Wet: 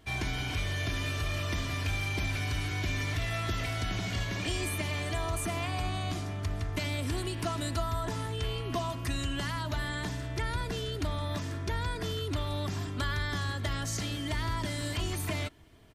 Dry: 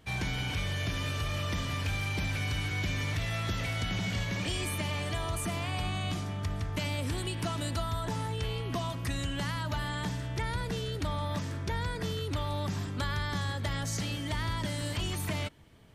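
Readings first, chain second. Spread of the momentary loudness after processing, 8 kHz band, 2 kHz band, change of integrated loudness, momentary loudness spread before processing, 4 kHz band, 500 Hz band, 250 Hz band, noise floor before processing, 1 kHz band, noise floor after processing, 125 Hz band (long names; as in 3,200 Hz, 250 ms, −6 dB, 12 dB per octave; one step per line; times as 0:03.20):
3 LU, +0.5 dB, +0.5 dB, 0.0 dB, 2 LU, 0.0 dB, +1.0 dB, −0.5 dB, −37 dBFS, 0.0 dB, −37 dBFS, −0.5 dB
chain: comb filter 2.9 ms, depth 42%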